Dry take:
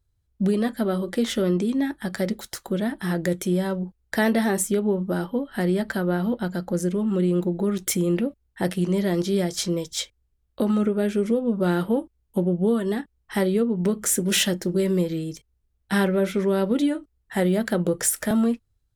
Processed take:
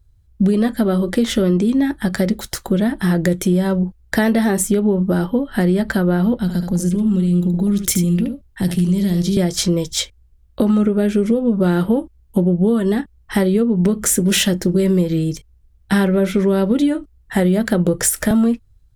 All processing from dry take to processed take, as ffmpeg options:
-filter_complex "[0:a]asettb=1/sr,asplit=3[a][b][c];[a]atrim=end=6.364[d];[b]atrim=start=6.36:end=9.37,asetpts=PTS-STARTPTS,afade=t=in:d=0.004:c=qsin,afade=t=out:st=3.006:d=0.004:c=qsin,acrossover=split=230|3000[e][f][g];[f]acompressor=threshold=-39dB:ratio=4:attack=3.2:release=140:knee=2.83:detection=peak[h];[e][h][g]amix=inputs=3:normalize=0,aecho=1:1:74:0.422,atrim=end_sample=132741[i];[c]atrim=start=9.366[j];[d][i]acrossfade=d=0.004:c1=hsin:c2=qsin[k];[k][j]acrossfade=d=0.004:c1=qsin:c2=hsin,lowshelf=f=140:g=11.5,acompressor=threshold=-22dB:ratio=2.5,volume=8dB"

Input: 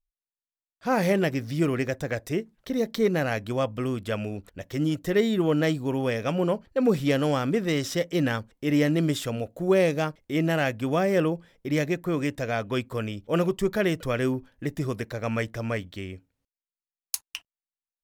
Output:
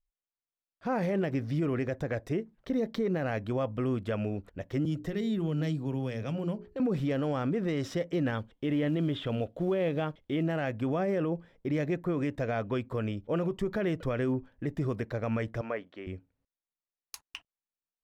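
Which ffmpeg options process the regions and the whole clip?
-filter_complex "[0:a]asettb=1/sr,asplit=3[a][b][c];[a]atrim=end=4.854[d];[b]atrim=start=4.85:end=6.8,asetpts=PTS-STARTPTS,afade=t=in:d=0.004:c=qsin,afade=t=out:st=1.946:d=0.004:c=qsin,bandreject=f=60:t=h:w=6,bandreject=f=120:t=h:w=6,bandreject=f=180:t=h:w=6,bandreject=f=240:t=h:w=6,bandreject=f=300:t=h:w=6,bandreject=f=360:t=h:w=6,bandreject=f=420:t=h:w=6,acrossover=split=210|3000[e][f][g];[f]acompressor=threshold=-37dB:ratio=4:attack=3.2:release=140:knee=2.83:detection=peak[h];[e][h][g]amix=inputs=3:normalize=0[i];[c]atrim=start=6.796[j];[d][i]acrossfade=d=0.004:c1=hsin:c2=qsin[k];[k][j]acrossfade=d=0.004:c1=qsin:c2=hsin,asettb=1/sr,asplit=3[l][m][n];[l]atrim=end=8.354[o];[m]atrim=start=8.35:end=10.43,asetpts=PTS-STARTPTS,afade=t=in:d=0.004:c=qsin,afade=t=out:st=2.076:d=0.004:c=qsin,acrossover=split=3000[p][q];[q]acompressor=threshold=-54dB:ratio=4:attack=1:release=60[r];[p][r]amix=inputs=2:normalize=0,equalizer=f=3.3k:t=o:w=0.5:g=13,acrusher=bits=7:mode=log:mix=0:aa=0.000001[s];[n]atrim=start=10.426[t];[o][s]acrossfade=d=0.004:c1=hsin:c2=qsin[u];[u][t]acrossfade=d=0.004:c1=qsin:c2=hsin,asettb=1/sr,asplit=3[v][w][x];[v]atrim=end=15.614[y];[w]atrim=start=15.61:end=16.07,asetpts=PTS-STARTPTS,afade=t=in:d=0.004:c=qsin,afade=t=out:st=0.456:d=0.004:c=qsin,acrossover=split=2600[z][aa];[aa]acompressor=threshold=-51dB:ratio=4:attack=1:release=60[ab];[z][ab]amix=inputs=2:normalize=0,highpass=390,lowpass=5.4k[ac];[x]atrim=start=16.066[ad];[y][ac]acrossfade=d=0.004:c1=hsin:c2=qsin[ae];[ae][ad]acrossfade=d=0.004:c1=qsin:c2=hsin,lowpass=f=1.5k:p=1,alimiter=limit=-22dB:level=0:latency=1:release=60"

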